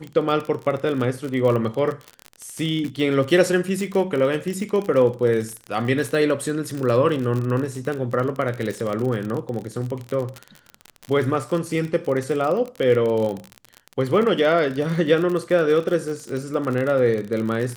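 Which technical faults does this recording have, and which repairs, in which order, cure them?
crackle 40/s -25 dBFS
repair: de-click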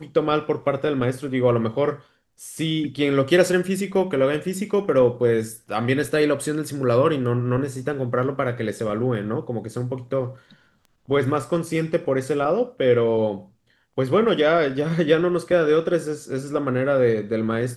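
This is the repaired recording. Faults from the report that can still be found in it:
none

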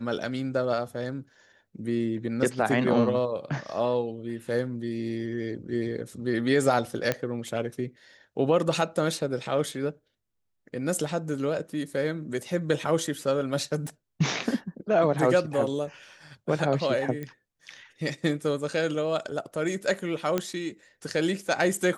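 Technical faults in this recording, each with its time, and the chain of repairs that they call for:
7.12 pop -11 dBFS
13.87 pop
17.23 pop -23 dBFS
20.38 pop -12 dBFS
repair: de-click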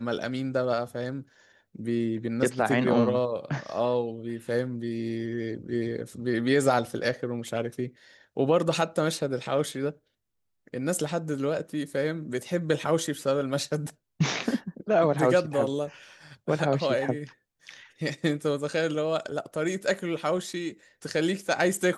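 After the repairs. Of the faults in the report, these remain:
none

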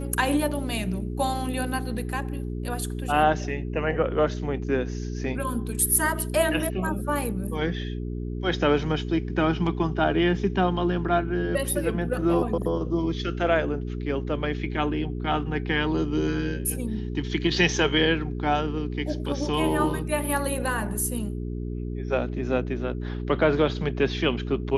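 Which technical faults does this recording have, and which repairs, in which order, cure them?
hum 60 Hz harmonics 7 -31 dBFS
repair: de-hum 60 Hz, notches 7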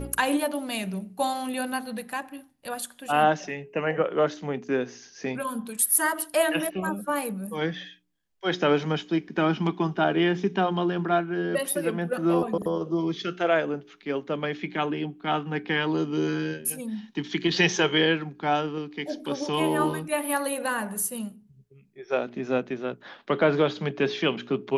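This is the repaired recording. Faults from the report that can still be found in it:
none

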